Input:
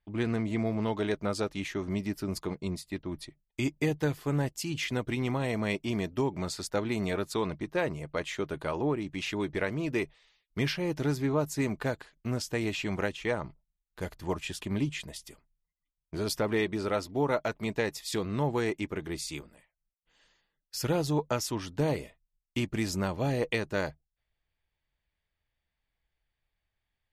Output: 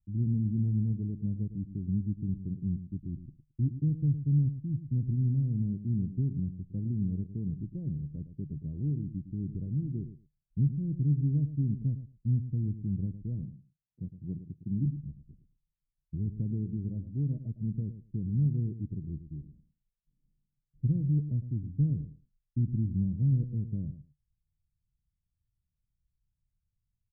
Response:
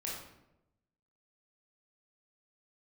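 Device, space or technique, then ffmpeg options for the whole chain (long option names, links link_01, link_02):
the neighbour's flat through the wall: -filter_complex "[0:a]lowpass=frequency=210:width=0.5412,lowpass=frequency=210:width=1.3066,equalizer=frequency=120:width_type=o:width=0.89:gain=6,asettb=1/sr,asplit=3[link_01][link_02][link_03];[link_01]atrim=end=13.434[link_04];[link_02]atrim=start=13.43:end=14.86,asetpts=PTS-STARTPTS,afade=type=in:duration=0.004:curve=qsin,afade=type=out:start_time=1.426:duration=0.004:curve=qsin,highpass=130[link_05];[link_03]atrim=start=14.856[link_06];[link_04][link_05]acrossfade=duration=0.004:curve1=hsin:curve2=qsin[link_07];[link_07][link_06]acrossfade=duration=0.004:curve1=qsin:curve2=hsin,asplit=2[link_08][link_09];[link_09]adelay=109,lowpass=frequency=2000:poles=1,volume=-11.5dB,asplit=2[link_10][link_11];[link_11]adelay=109,lowpass=frequency=2000:poles=1,volume=0.15[link_12];[link_08][link_10][link_12]amix=inputs=3:normalize=0,volume=2dB"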